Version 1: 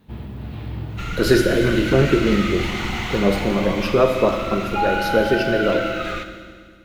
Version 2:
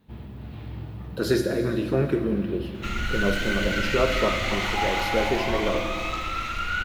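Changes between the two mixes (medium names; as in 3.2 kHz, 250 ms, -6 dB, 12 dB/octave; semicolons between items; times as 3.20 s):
speech -7.0 dB; first sound -6.5 dB; second sound: entry +1.85 s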